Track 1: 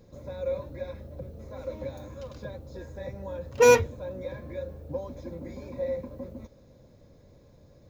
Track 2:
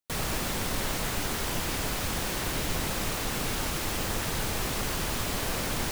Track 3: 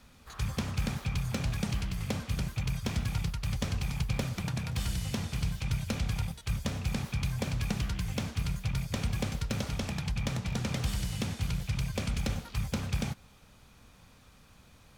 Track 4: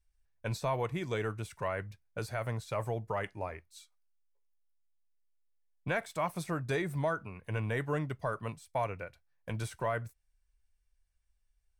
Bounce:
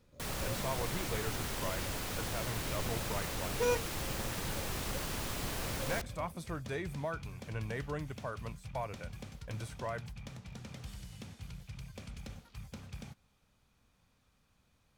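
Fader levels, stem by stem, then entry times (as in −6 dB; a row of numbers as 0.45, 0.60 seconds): −14.5, −8.0, −14.5, −6.0 decibels; 0.00, 0.10, 0.00, 0.00 seconds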